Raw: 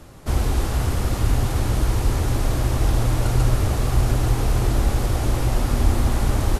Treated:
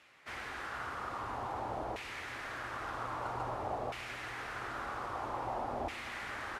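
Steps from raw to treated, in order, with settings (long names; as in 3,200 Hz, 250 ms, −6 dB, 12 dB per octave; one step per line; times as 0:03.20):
auto-filter band-pass saw down 0.51 Hz 690–2,400 Hz
level −1.5 dB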